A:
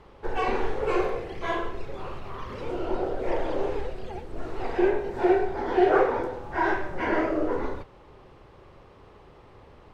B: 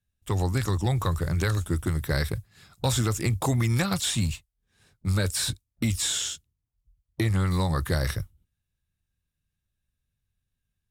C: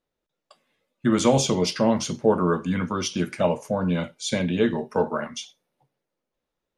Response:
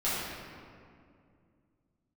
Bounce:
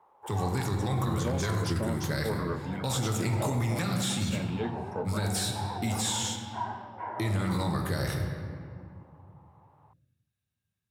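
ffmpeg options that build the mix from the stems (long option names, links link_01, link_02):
-filter_complex "[0:a]alimiter=limit=-18.5dB:level=0:latency=1:release=116,bandpass=frequency=890:width_type=q:width=4.2:csg=0,volume=-1dB[link_01];[1:a]highpass=frequency=88:width=0.5412,highpass=frequency=88:width=1.3066,volume=-5dB,asplit=2[link_02][link_03];[link_03]volume=-10.5dB[link_04];[2:a]acontrast=85,volume=-18.5dB[link_05];[3:a]atrim=start_sample=2205[link_06];[link_04][link_06]afir=irnorm=-1:irlink=0[link_07];[link_01][link_02][link_05][link_07]amix=inputs=4:normalize=0,alimiter=limit=-20.5dB:level=0:latency=1:release=33"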